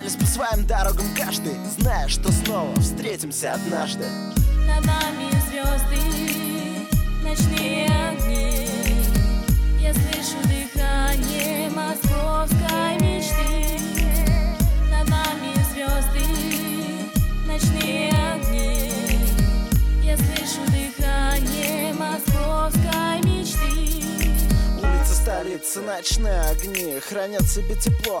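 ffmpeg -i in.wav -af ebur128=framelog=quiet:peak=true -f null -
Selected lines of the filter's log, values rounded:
Integrated loudness:
  I:         -22.2 LUFS
  Threshold: -32.2 LUFS
Loudness range:
  LRA:         1.3 LU
  Threshold: -42.2 LUFS
  LRA low:   -22.7 LUFS
  LRA high:  -21.4 LUFS
True peak:
  Peak:       -8.0 dBFS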